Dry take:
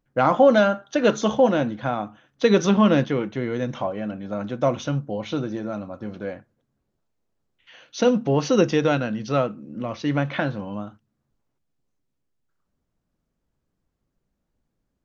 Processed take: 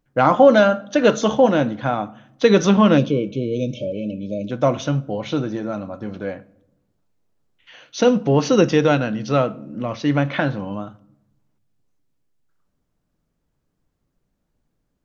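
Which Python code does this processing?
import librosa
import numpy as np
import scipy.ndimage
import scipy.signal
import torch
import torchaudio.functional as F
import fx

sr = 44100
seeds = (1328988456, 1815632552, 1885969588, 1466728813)

y = fx.spec_erase(x, sr, start_s=2.98, length_s=1.53, low_hz=640.0, high_hz=2200.0)
y = fx.room_shoebox(y, sr, seeds[0], volume_m3=2100.0, walls='furnished', distance_m=0.41)
y = F.gain(torch.from_numpy(y), 3.5).numpy()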